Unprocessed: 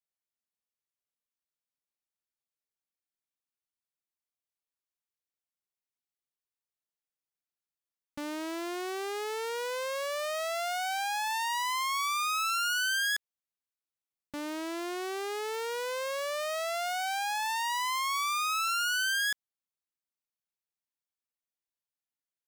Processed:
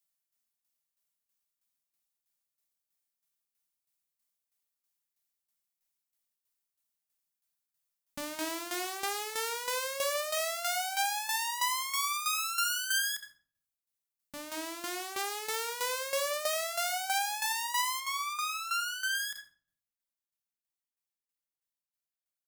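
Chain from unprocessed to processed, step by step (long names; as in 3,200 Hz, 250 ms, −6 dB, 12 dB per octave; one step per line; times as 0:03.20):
speech leveller within 3 dB 2 s
high-shelf EQ 5,300 Hz +11.5 dB, from 0:18.00 +2 dB, from 0:19.15 +7.5 dB
rectangular room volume 850 cubic metres, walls furnished, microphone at 1.2 metres
shaped tremolo saw down 3.1 Hz, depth 70%
parametric band 390 Hz −11 dB 0.41 octaves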